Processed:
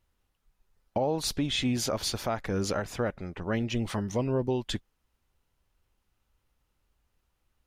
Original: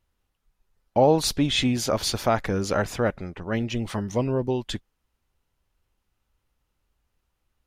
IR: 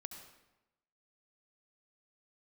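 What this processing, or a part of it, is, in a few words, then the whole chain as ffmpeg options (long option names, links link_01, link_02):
stacked limiters: -af "alimiter=limit=-13dB:level=0:latency=1:release=360,alimiter=limit=-19dB:level=0:latency=1:release=400"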